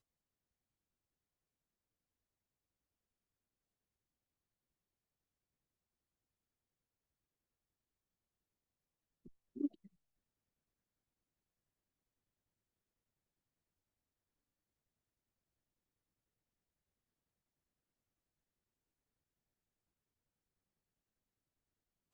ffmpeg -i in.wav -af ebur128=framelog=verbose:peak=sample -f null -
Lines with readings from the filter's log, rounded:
Integrated loudness:
  I:         -42.5 LUFS
  Threshold: -56.4 LUFS
Loudness range:
  LRA:         0.0 LU
  Threshold: -71.4 LUFS
  LRA low:   -51.2 LUFS
  LRA high:  -51.2 LUFS
Sample peak:
  Peak:      -25.9 dBFS